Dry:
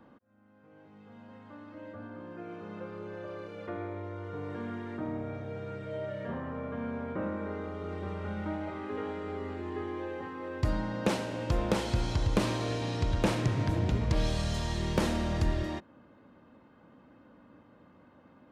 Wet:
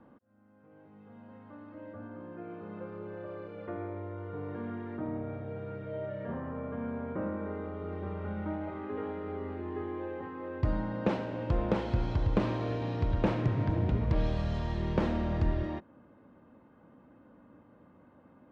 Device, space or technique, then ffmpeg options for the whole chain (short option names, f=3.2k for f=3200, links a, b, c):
phone in a pocket: -af "lowpass=3.8k,highshelf=f=2.2k:g=-10"